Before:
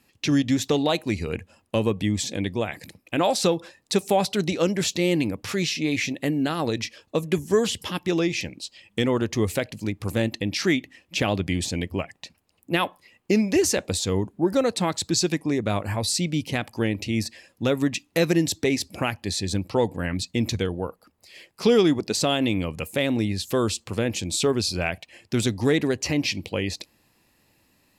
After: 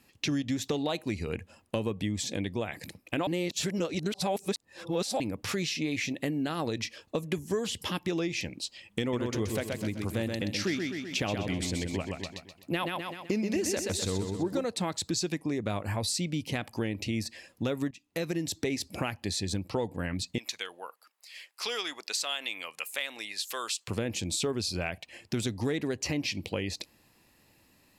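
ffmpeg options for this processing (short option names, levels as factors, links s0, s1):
-filter_complex "[0:a]asettb=1/sr,asplit=3[s0][s1][s2];[s0]atrim=end=9.004[s3];[s1]atrim=start=9:end=14.65,asetpts=PTS-STARTPTS,afade=t=in:d=0.004:c=qsin,afade=t=out:st=5.646:d=0.004:c=qsin,aecho=1:1:127|254|381|508|635:0.531|0.223|0.0936|0.0393|0.0165,atrim=end_sample=249165[s4];[s2]atrim=start=14.646[s5];[s3][s4]acrossfade=d=0.004:c1=hsin:c2=qsin[s6];[s6][s5]acrossfade=d=0.004:c1=qsin:c2=hsin,asettb=1/sr,asplit=3[s7][s8][s9];[s7]atrim=end=20.384[s10];[s8]atrim=start=20.38:end=23.88,asetpts=PTS-STARTPTS,afade=t=in:d=0.004:c=qsin,afade=t=out:st=3.496:d=0.004:c=qsin,highpass=1200[s11];[s9]atrim=start=23.876[s12];[s10][s11]acrossfade=d=0.004:c1=hsin:c2=qsin[s13];[s13][s12]acrossfade=d=0.004:c1=qsin:c2=hsin,asplit=4[s14][s15][s16][s17];[s14]atrim=end=3.272[s18];[s15]atrim=start=3.268:end=5.202,asetpts=PTS-STARTPTS,areverse[s19];[s16]atrim=start=5.198:end=17.91,asetpts=PTS-STARTPTS,afade=t=out:st=12.708:d=0.004:c=hsin:silence=0.105925[s20];[s17]atrim=start=17.91,asetpts=PTS-STARTPTS,afade=t=in:d=0.83:silence=0.105925[s21];[s18][s19]acrossfade=d=0.004:c1=hsin:c2=hsin[s22];[s20][s21]concat=n=2:v=0:a=1[s23];[s22][s23]acrossfade=d=0.004:c1=hsin:c2=hsin,acompressor=threshold=0.0316:ratio=3"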